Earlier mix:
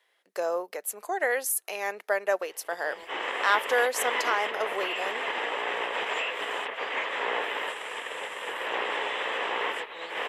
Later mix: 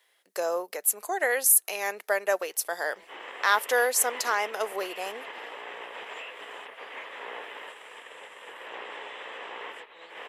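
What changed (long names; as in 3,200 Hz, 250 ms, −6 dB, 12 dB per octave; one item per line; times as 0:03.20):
speech: add high-shelf EQ 5,200 Hz +11 dB
background −10.0 dB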